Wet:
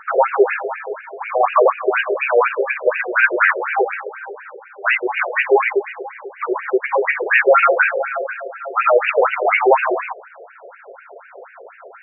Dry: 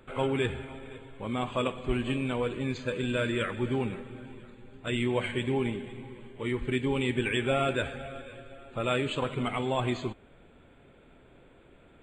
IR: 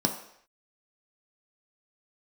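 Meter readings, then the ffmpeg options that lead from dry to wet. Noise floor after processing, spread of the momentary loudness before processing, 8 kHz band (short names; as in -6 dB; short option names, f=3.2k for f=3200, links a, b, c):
-44 dBFS, 16 LU, under -30 dB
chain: -filter_complex "[0:a]equalizer=f=1.5k:t=o:w=1.7:g=3.5,apsyclip=26dB,acrossover=split=100|520|2300[a][b][c][d];[d]aeval=exprs='sgn(val(0))*max(abs(val(0))-0.0376,0)':c=same[e];[a][b][c][e]amix=inputs=4:normalize=0,afftfilt=real='re*between(b*sr/1024,510*pow(2100/510,0.5+0.5*sin(2*PI*4.1*pts/sr))/1.41,510*pow(2100/510,0.5+0.5*sin(2*PI*4.1*pts/sr))*1.41)':imag='im*between(b*sr/1024,510*pow(2100/510,0.5+0.5*sin(2*PI*4.1*pts/sr))/1.41,510*pow(2100/510,0.5+0.5*sin(2*PI*4.1*pts/sr))*1.41)':win_size=1024:overlap=0.75,volume=-1.5dB"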